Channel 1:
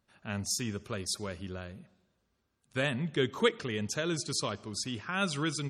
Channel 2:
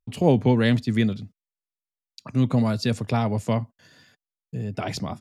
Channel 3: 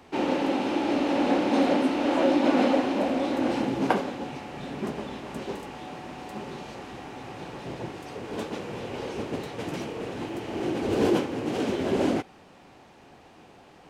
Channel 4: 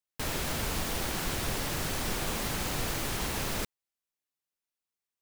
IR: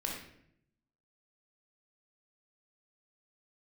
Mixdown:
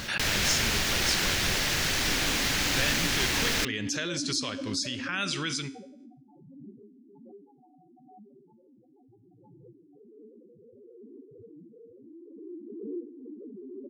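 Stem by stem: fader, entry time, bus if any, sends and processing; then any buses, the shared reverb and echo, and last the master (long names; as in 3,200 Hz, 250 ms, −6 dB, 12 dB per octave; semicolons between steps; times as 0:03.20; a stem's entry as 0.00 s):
+2.0 dB, 0.00 s, bus A, no send, no processing
muted
−5.0 dB, 1.85 s, bus A, no send, rotating-speaker cabinet horn 6 Hz; spectral peaks only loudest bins 2
+1.0 dB, 0.00 s, no bus, no send, no processing
bus A: 0.0 dB, tuned comb filter 58 Hz, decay 0.63 s, harmonics all, mix 50%; brickwall limiter −25.5 dBFS, peak gain reduction 10.5 dB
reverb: not used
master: flat-topped bell 3,200 Hz +9 dB 2.4 octaves; background raised ahead of every attack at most 36 dB per second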